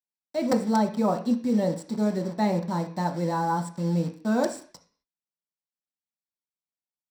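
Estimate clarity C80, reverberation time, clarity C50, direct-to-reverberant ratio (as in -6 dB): 16.0 dB, 0.45 s, 11.0 dB, 2.5 dB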